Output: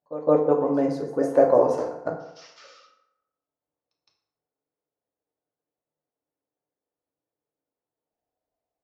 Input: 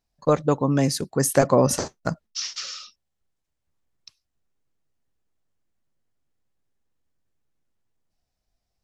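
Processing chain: band-pass filter 560 Hz, Q 1.5; pre-echo 163 ms -14.5 dB; FDN reverb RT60 0.87 s, low-frequency decay 0.75×, high-frequency decay 0.6×, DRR 0.5 dB

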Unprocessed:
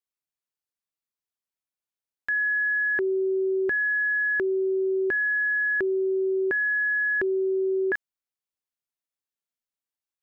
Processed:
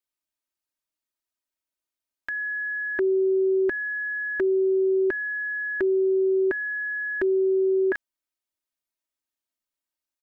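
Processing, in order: comb 3.2 ms, depth 85%

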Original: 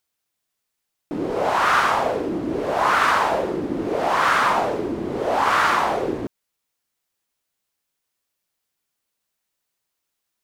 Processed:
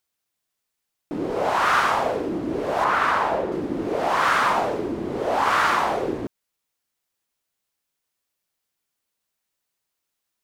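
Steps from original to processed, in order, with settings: 2.84–3.52 s: treble shelf 3.4 kHz -9.5 dB; trim -1.5 dB

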